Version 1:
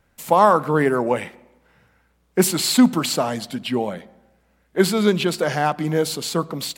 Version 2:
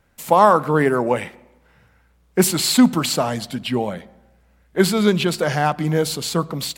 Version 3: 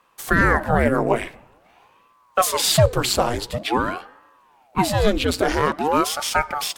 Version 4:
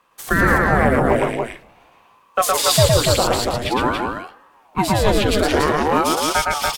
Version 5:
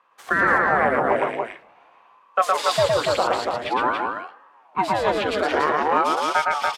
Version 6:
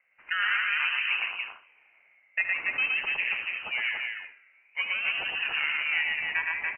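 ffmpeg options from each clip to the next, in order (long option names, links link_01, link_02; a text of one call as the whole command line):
ffmpeg -i in.wav -af "asubboost=boost=2:cutoff=160,volume=1.5dB" out.wav
ffmpeg -i in.wav -af "alimiter=limit=-7.5dB:level=0:latency=1:release=268,aeval=exprs='val(0)*sin(2*PI*590*n/s+590*0.85/0.47*sin(2*PI*0.47*n/s))':channel_layout=same,volume=3.5dB" out.wav
ffmpeg -i in.wav -af "aecho=1:1:113.7|285.7:0.794|0.631" out.wav
ffmpeg -i in.wav -af "bandpass=frequency=1100:width_type=q:width=0.7:csg=0" out.wav
ffmpeg -i in.wav -af "aecho=1:1:72:0.266,lowpass=frequency=2700:width_type=q:width=0.5098,lowpass=frequency=2700:width_type=q:width=0.6013,lowpass=frequency=2700:width_type=q:width=0.9,lowpass=frequency=2700:width_type=q:width=2.563,afreqshift=-3200,volume=-8.5dB" out.wav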